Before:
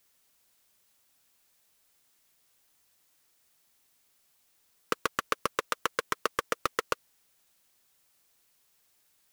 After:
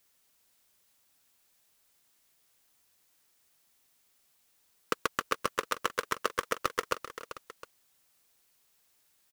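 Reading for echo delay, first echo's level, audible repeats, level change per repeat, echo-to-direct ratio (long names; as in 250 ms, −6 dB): 287 ms, −19.0 dB, 3, repeats not evenly spaced, −10.5 dB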